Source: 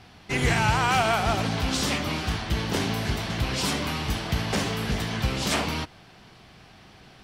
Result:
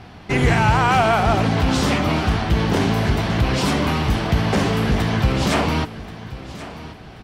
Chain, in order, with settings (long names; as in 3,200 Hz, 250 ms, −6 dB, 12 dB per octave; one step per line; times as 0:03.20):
high-shelf EQ 2,400 Hz −10.5 dB
in parallel at +1.5 dB: brickwall limiter −22.5 dBFS, peak gain reduction 10 dB
on the sum: repeating echo 1,082 ms, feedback 31%, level −16 dB
level +4 dB